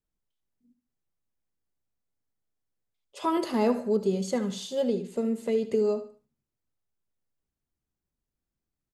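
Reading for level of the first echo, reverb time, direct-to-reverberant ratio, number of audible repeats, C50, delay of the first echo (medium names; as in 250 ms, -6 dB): -13.0 dB, no reverb, no reverb, 3, no reverb, 74 ms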